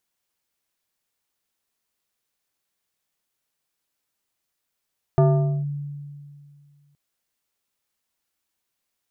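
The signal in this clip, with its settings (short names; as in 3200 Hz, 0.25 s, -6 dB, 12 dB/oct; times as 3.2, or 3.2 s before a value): FM tone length 1.77 s, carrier 144 Hz, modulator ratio 3.65, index 0.94, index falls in 0.47 s linear, decay 2.25 s, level -11.5 dB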